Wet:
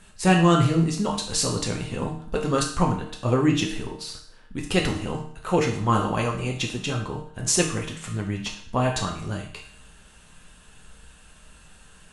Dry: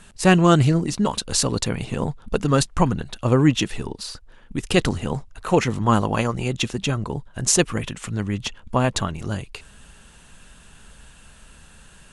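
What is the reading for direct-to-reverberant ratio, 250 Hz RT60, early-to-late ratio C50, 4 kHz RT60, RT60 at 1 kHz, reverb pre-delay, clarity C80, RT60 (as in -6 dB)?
-0.5 dB, 0.60 s, 7.0 dB, 0.60 s, 0.60 s, 7 ms, 10.0 dB, 0.60 s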